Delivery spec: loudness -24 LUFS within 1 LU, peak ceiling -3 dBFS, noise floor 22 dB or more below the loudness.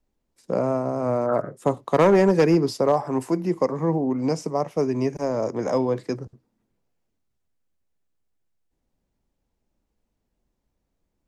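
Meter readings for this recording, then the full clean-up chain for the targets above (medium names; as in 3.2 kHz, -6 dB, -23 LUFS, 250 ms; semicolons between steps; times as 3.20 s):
clipped samples 0.3%; clipping level -10.5 dBFS; loudness -23.0 LUFS; peak level -10.5 dBFS; loudness target -24.0 LUFS
-> clip repair -10.5 dBFS; trim -1 dB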